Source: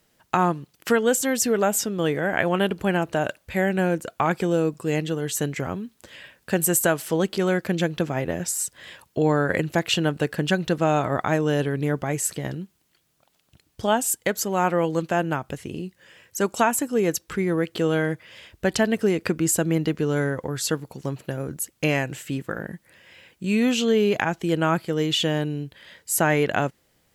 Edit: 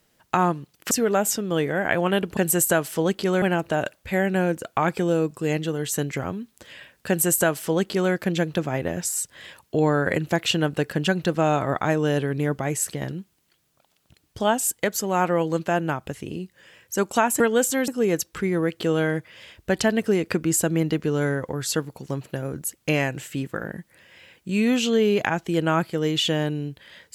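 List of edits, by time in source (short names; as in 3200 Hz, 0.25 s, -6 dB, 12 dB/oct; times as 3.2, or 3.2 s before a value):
0.91–1.39 move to 16.83
6.51–7.56 copy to 2.85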